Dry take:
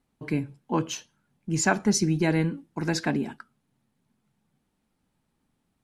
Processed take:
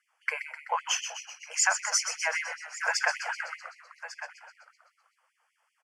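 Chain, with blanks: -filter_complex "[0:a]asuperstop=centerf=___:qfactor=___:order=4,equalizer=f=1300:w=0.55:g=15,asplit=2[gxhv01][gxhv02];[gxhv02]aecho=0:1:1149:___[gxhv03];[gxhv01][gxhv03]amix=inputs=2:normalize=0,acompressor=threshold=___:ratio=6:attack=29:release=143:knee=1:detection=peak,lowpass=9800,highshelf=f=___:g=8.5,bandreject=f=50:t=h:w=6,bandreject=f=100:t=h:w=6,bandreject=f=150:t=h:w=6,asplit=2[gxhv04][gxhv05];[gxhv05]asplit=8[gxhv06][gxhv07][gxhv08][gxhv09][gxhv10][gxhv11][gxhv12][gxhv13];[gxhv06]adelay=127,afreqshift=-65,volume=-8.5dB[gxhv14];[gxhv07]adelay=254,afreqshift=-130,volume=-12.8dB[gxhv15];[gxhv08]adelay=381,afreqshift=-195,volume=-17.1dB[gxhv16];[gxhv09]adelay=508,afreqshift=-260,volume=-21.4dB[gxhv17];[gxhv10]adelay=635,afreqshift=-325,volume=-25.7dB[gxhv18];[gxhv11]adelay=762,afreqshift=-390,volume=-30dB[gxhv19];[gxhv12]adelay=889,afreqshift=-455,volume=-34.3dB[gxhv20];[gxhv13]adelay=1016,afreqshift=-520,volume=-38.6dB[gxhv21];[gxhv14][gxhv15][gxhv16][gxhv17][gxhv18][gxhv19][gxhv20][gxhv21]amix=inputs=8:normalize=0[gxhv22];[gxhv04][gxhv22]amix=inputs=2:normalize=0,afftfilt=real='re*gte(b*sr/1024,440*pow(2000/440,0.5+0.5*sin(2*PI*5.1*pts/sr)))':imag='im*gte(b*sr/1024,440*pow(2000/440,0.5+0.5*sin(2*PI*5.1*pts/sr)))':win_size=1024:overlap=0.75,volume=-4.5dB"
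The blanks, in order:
3900, 2.9, 0.119, -24dB, 2200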